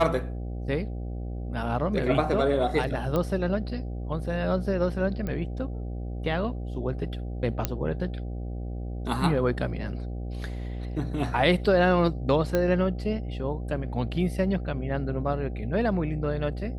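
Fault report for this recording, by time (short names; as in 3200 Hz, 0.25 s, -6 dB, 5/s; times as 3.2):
buzz 60 Hz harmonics 13 -33 dBFS
3.16 pop -15 dBFS
5.27 pop -20 dBFS
7.65 pop -9 dBFS
12.55 pop -12 dBFS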